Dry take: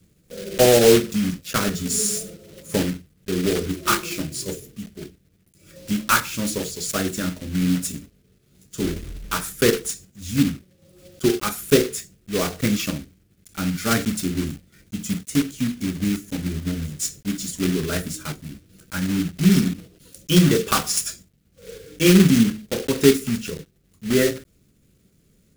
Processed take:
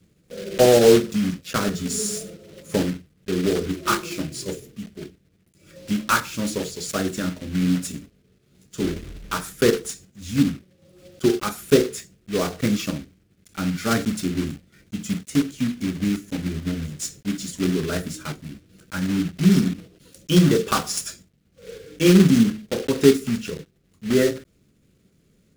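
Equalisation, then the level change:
low-shelf EQ 88 Hz −6.5 dB
dynamic equaliser 2,300 Hz, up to −4 dB, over −34 dBFS, Q 1
high-shelf EQ 7,100 Hz −9.5 dB
+1.0 dB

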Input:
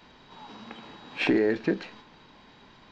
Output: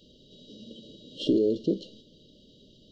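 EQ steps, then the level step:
linear-phase brick-wall band-stop 660–2,800 Hz
notch filter 650 Hz, Q 12
0.0 dB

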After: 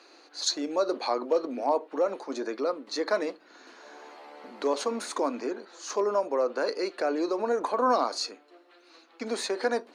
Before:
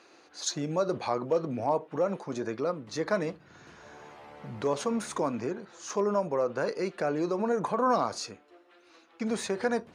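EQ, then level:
elliptic high-pass filter 260 Hz, stop band 60 dB
parametric band 4,300 Hz +9.5 dB 0.22 octaves
+2.0 dB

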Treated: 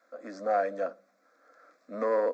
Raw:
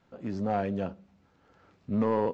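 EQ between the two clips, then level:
high-pass filter 380 Hz 24 dB per octave
phaser with its sweep stopped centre 590 Hz, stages 8
+6.0 dB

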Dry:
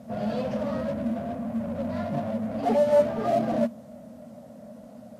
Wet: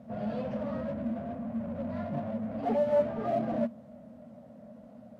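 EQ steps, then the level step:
bass and treble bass +2 dB, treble −12 dB
−6.0 dB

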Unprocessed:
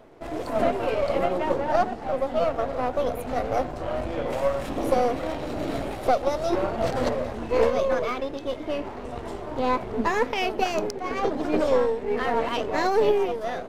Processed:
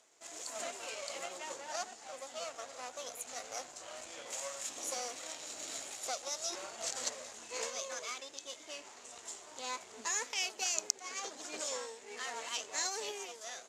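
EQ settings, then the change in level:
resonant band-pass 7,000 Hz, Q 5.2
+15.0 dB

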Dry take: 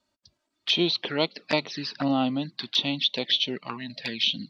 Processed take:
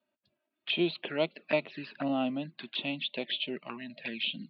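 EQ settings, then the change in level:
high-frequency loss of the air 330 metres
loudspeaker in its box 150–4,100 Hz, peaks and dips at 160 Hz +6 dB, 230 Hz +5 dB, 360 Hz +6 dB, 620 Hz +9 dB, 1,600 Hz +4 dB, 2,600 Hz +8 dB
high-shelf EQ 2,400 Hz +7.5 dB
−9.0 dB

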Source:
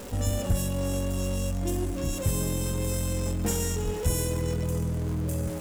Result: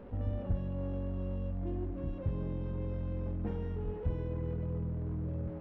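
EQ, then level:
high-frequency loss of the air 310 metres
head-to-tape spacing loss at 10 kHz 38 dB
−6.5 dB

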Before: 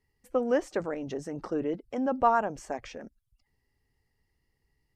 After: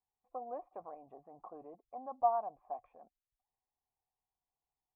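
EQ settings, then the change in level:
dynamic equaliser 1,000 Hz, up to −3 dB, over −34 dBFS, Q 1.1
formant resonators in series a
+1.0 dB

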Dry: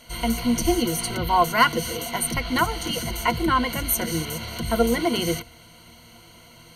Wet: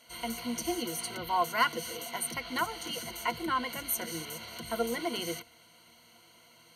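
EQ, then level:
high-pass filter 370 Hz 6 dB per octave
−8.5 dB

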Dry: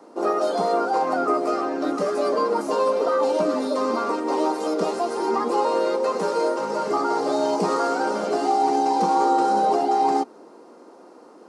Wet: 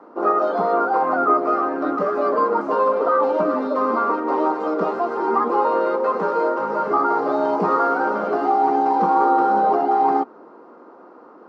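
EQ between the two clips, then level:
head-to-tape spacing loss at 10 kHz 35 dB
parametric band 1,300 Hz +10 dB 1 octave
+2.0 dB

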